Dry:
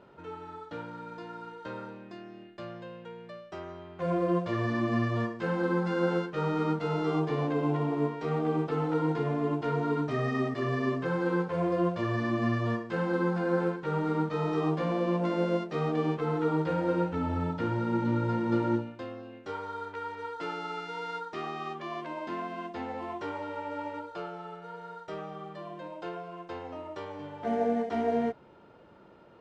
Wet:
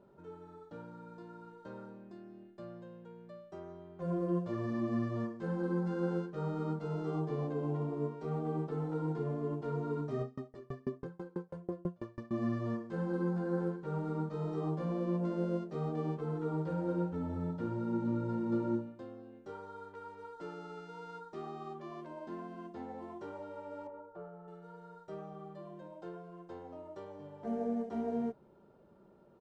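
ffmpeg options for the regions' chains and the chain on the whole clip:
-filter_complex "[0:a]asettb=1/sr,asplit=3[a][b][c];[a]atrim=end=10.214[d];[b]atrim=start=10.21:end=12.31,asetpts=PTS-STARTPTS,afade=t=in:d=0.004:c=qsin,afade=t=out:st=2.096:d=0.004:c=qsin,aphaser=in_gain=1:out_gain=1:delay=2.2:decay=0.3:speed=1.3:type=sinusoidal,aeval=exprs='val(0)*pow(10,-34*if(lt(mod(6.1*n/s,1),2*abs(6.1)/1000),1-mod(6.1*n/s,1)/(2*abs(6.1)/1000),(mod(6.1*n/s,1)-2*abs(6.1)/1000)/(1-2*abs(6.1)/1000))/20)':c=same[e];[c]atrim=start=12.306[f];[d][e]acrossfade=d=0.004:c1=hsin:c2=qsin[g];[g][f]acrossfade=d=0.004:c1=qsin:c2=hsin,asettb=1/sr,asplit=3[h][i][j];[h]atrim=end=23.874[k];[i]atrim=start=23.87:end=24.48,asetpts=PTS-STARTPTS,afade=t=in:d=0.004:c=qsin,afade=t=out:st=0.606:d=0.004:c=qsin,lowpass=1.3k,equalizer=f=250:t=o:w=0.52:g=-6.5,bandreject=f=50:t=h:w=6,bandreject=f=100:t=h:w=6,bandreject=f=150:t=h:w=6,bandreject=f=200:t=h:w=6,bandreject=f=250:t=h:w=6,bandreject=f=300:t=h:w=6,bandreject=f=350:t=h:w=6,bandreject=f=400:t=h:w=6,bandreject=f=450:t=h:w=6,bandreject=f=500:t=h:w=6[l];[j]atrim=start=24.476[m];[k][l]acrossfade=d=0.004:c1=hsin:c2=qsin[n];[n][m]acrossfade=d=0.004:c1=qsin:c2=hsin,equalizer=f=2.5k:w=0.54:g=-14,aecho=1:1:5.1:0.36,volume=-5dB"

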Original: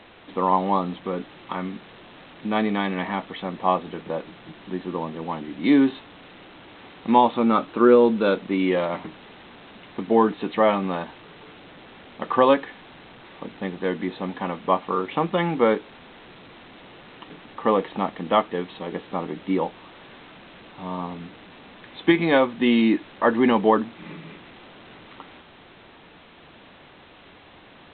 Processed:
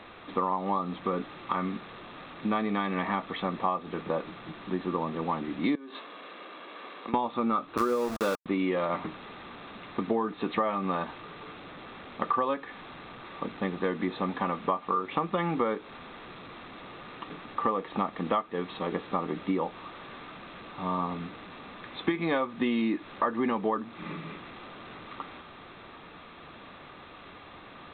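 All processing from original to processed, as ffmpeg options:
-filter_complex "[0:a]asettb=1/sr,asplit=3[a][b][c];[a]atrim=end=5.754[d];[b]atrim=start=5.75:end=7.14,asetpts=PTS-STARTPTS,afade=t=in:d=0.004:c=qsin,afade=t=out:st=1.386:d=0.004:c=qsin,highpass=f=240:w=0.5412,highpass=f=240:w=1.3066,aecho=1:1:1.8:0.31,atrim=end_sample=61299,acompressor=threshold=-34dB:ratio=20:attack=3.2:release=140:knee=1:detection=peak[e];[c]atrim=start=7.136[f];[d][e]acrossfade=d=0.004:c1=hsin:c2=qsin[g];[g][f]acrossfade=d=0.004:c1=qsin:c2=hsin,asettb=1/sr,asplit=3[h][i][j];[h]atrim=end=7.774[k];[i]atrim=start=7.77:end=8.46,asetpts=PTS-STARTPTS,afade=t=in:d=0.004:c=qsin,afade=t=out:st=0.686:d=0.004:c=qsin,equalizer=f=760:w=1:g=4,aeval=exprs='val(0)*gte(abs(val(0)),0.0841)':c=same[l];[j]atrim=start=8.456[m];[k][l]acrossfade=d=0.004:c1=hsin:c2=qsin[n];[n][m]acrossfade=d=0.004:c1=qsin:c2=hsin,equalizer=f=1.2k:w=7.1:g=9.5,bandreject=f=3k:w=13,acompressor=threshold=-24dB:ratio=12"

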